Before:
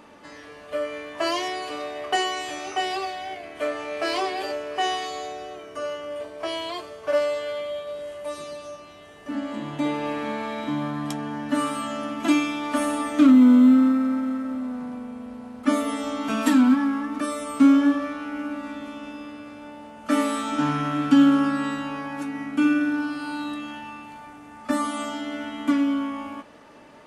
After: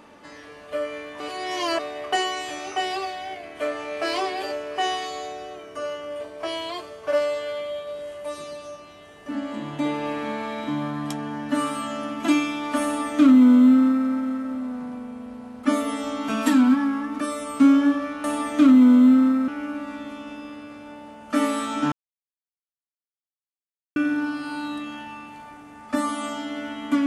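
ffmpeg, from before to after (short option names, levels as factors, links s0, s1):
-filter_complex "[0:a]asplit=7[s0][s1][s2][s3][s4][s5][s6];[s0]atrim=end=1.202[s7];[s1]atrim=start=1.198:end=1.792,asetpts=PTS-STARTPTS,areverse[s8];[s2]atrim=start=1.788:end=18.242[s9];[s3]atrim=start=12.838:end=14.082[s10];[s4]atrim=start=18.238:end=20.68,asetpts=PTS-STARTPTS,afade=t=out:st=2.438:d=0.004:c=hsin[s11];[s5]atrim=start=20.68:end=22.72,asetpts=PTS-STARTPTS,volume=0[s12];[s6]atrim=start=22.72,asetpts=PTS-STARTPTS,afade=t=in:d=0.004:c=hsin[s13];[s7][s8]acrossfade=d=0.004:c1=hsin:c2=hsin[s14];[s14][s9]acrossfade=d=0.004:c1=hsin:c2=hsin[s15];[s15][s10]acrossfade=d=0.004:c1=hsin:c2=hsin[s16];[s11][s12][s13]concat=n=3:v=0:a=1[s17];[s16][s17]acrossfade=d=0.004:c1=hsin:c2=hsin"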